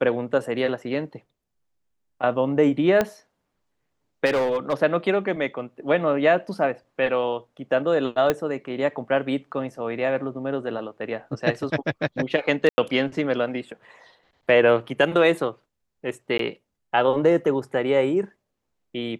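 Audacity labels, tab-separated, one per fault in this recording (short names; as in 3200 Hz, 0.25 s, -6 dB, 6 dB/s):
3.010000	3.010000	pop -8 dBFS
4.250000	4.740000	clipped -18.5 dBFS
8.300000	8.300000	pop -7 dBFS
12.690000	12.780000	gap 90 ms
16.380000	16.390000	gap 13 ms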